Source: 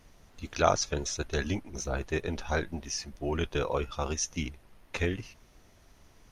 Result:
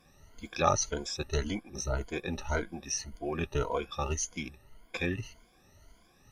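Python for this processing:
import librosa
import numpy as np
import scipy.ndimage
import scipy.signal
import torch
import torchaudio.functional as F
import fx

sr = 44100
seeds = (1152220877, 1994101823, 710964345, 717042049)

y = fx.spec_ripple(x, sr, per_octave=1.8, drift_hz=1.8, depth_db=19)
y = y * 10.0 ** (-5.0 / 20.0)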